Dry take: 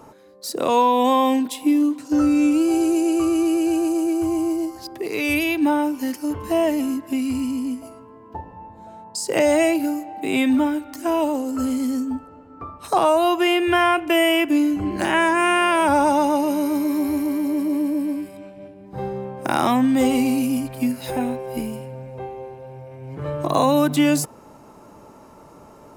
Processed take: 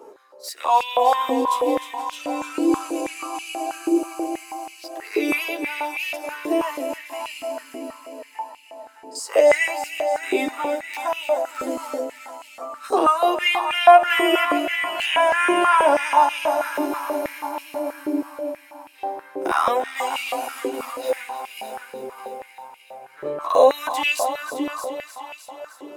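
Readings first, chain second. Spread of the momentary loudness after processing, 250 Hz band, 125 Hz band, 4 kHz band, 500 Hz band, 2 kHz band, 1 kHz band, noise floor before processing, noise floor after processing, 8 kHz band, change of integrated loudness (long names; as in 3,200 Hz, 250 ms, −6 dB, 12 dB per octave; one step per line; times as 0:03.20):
19 LU, −9.5 dB, below −20 dB, +1.0 dB, +1.0 dB, +1.5 dB, +2.5 dB, −46 dBFS, −48 dBFS, −3.0 dB, −1.0 dB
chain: echo ahead of the sound 39 ms −18.5 dB
multi-voice chorus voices 4, 0.26 Hz, delay 12 ms, depth 2.2 ms
on a send: echo machine with several playback heads 306 ms, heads first and second, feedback 54%, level −11 dB
on the sum: high-pass on a step sequencer 6.2 Hz 390–2,600 Hz
level −1 dB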